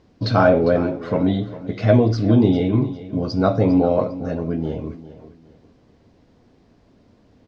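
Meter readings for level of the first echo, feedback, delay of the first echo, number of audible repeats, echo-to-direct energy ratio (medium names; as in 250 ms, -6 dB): -15.5 dB, 30%, 402 ms, 2, -15.0 dB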